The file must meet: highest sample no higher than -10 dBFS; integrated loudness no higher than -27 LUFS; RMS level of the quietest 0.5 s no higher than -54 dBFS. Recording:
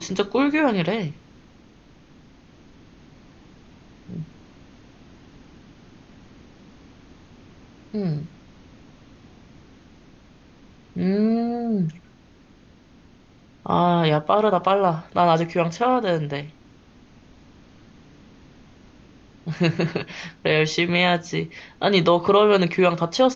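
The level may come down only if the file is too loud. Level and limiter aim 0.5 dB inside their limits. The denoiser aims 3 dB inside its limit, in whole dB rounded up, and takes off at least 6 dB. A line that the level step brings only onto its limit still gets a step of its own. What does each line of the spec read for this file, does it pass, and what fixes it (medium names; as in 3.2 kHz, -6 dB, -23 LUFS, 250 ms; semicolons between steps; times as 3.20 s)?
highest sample -4.5 dBFS: fail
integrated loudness -21.5 LUFS: fail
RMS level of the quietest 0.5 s -52 dBFS: fail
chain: trim -6 dB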